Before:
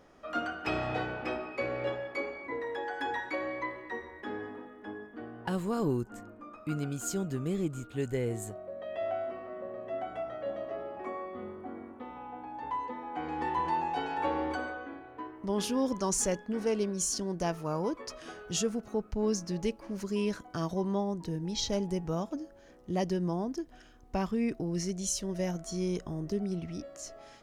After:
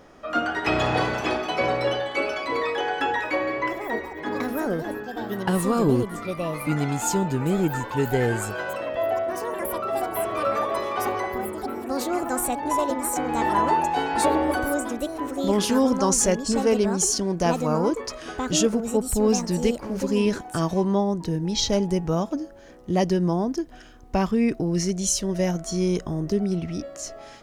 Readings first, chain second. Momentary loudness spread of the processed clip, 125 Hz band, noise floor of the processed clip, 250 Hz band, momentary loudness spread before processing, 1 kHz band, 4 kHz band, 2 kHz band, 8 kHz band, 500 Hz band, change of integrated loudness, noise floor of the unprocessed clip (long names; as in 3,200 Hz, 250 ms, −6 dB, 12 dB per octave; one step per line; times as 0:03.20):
8 LU, +9.0 dB, −43 dBFS, +10.0 dB, 12 LU, +10.5 dB, +10.0 dB, +10.5 dB, +10.0 dB, +10.0 dB, +10.0 dB, −54 dBFS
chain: delay with pitch and tempo change per echo 301 ms, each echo +5 semitones, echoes 3, each echo −6 dB
level +9 dB